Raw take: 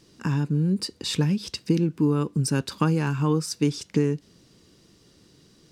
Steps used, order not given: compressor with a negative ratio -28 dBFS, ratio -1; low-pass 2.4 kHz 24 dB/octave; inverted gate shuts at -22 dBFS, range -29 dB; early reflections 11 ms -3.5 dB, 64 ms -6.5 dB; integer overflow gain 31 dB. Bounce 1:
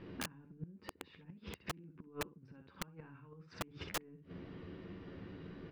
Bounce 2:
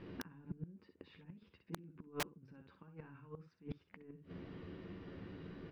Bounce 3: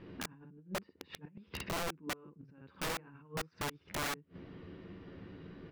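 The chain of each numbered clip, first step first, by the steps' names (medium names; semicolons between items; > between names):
low-pass > compressor with a negative ratio > early reflections > inverted gate > integer overflow; compressor with a negative ratio > early reflections > inverted gate > low-pass > integer overflow; early reflections > compressor with a negative ratio > low-pass > inverted gate > integer overflow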